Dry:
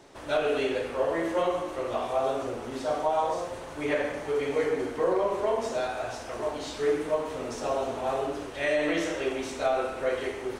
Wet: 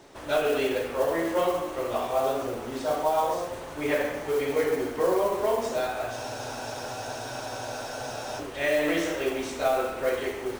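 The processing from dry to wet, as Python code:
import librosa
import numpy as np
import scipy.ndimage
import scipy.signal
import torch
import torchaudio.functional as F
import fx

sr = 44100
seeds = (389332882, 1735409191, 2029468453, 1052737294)

y = fx.mod_noise(x, sr, seeds[0], snr_db=21)
y = fx.spec_freeze(y, sr, seeds[1], at_s=6.13, hold_s=2.26)
y = F.gain(torch.from_numpy(y), 1.5).numpy()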